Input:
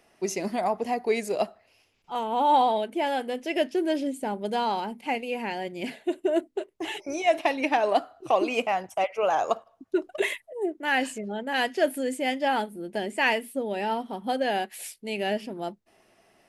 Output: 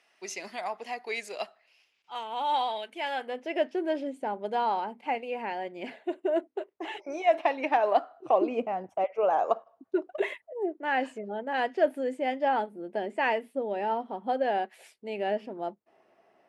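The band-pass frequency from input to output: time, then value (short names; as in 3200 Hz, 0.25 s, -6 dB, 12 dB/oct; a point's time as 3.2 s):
band-pass, Q 0.68
2.99 s 2700 Hz
3.41 s 890 Hz
8.15 s 890 Hz
8.63 s 250 Hz
9.52 s 670 Hz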